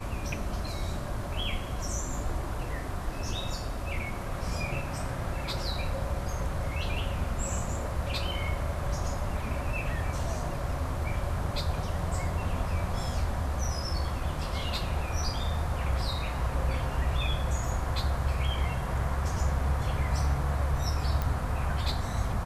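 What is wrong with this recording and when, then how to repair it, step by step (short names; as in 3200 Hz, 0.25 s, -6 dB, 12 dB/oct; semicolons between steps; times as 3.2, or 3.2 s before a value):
21.22 pop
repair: de-click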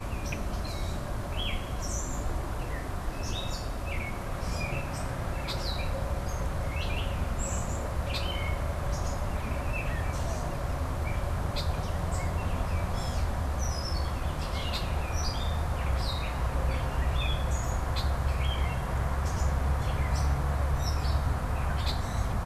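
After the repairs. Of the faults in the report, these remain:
none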